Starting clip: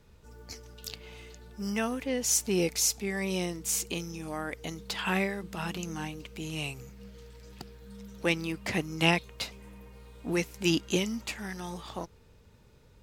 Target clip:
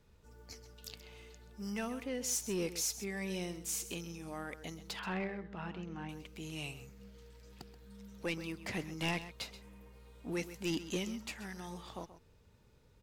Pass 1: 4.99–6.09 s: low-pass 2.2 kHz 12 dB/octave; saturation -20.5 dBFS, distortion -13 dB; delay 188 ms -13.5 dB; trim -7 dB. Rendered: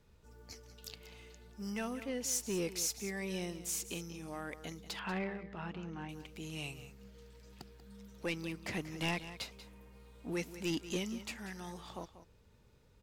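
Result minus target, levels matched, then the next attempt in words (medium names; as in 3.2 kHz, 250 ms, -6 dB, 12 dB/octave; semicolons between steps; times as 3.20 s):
echo 58 ms late
4.99–6.09 s: low-pass 2.2 kHz 12 dB/octave; saturation -20.5 dBFS, distortion -13 dB; delay 130 ms -13.5 dB; trim -7 dB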